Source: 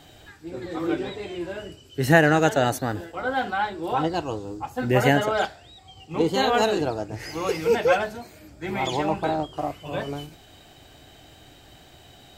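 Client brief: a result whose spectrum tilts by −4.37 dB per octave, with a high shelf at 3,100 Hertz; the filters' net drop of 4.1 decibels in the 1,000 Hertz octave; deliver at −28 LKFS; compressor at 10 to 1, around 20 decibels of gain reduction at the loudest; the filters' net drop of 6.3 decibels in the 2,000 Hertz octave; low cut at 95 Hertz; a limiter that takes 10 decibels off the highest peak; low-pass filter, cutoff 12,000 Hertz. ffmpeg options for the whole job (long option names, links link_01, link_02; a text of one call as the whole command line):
ffmpeg -i in.wav -af "highpass=95,lowpass=12000,equalizer=frequency=1000:width_type=o:gain=-5,equalizer=frequency=2000:width_type=o:gain=-8.5,highshelf=frequency=3100:gain=6.5,acompressor=threshold=-36dB:ratio=10,volume=16.5dB,alimiter=limit=-18dB:level=0:latency=1" out.wav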